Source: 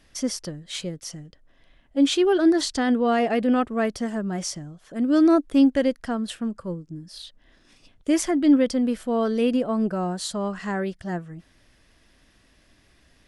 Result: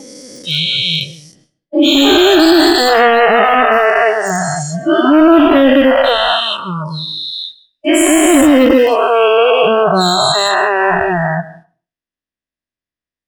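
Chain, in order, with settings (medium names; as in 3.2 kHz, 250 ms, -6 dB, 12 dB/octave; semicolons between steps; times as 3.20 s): every event in the spectrogram widened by 480 ms; dynamic bell 220 Hz, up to -7 dB, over -31 dBFS, Q 2.1; gate -38 dBFS, range -26 dB; bass shelf 92 Hz -8 dB; overload inside the chain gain 12.5 dB; spectral noise reduction 25 dB; on a send at -19 dB: reverberation RT60 0.40 s, pre-delay 117 ms; on the sum: loudness maximiser +14.5 dB; trim -1 dB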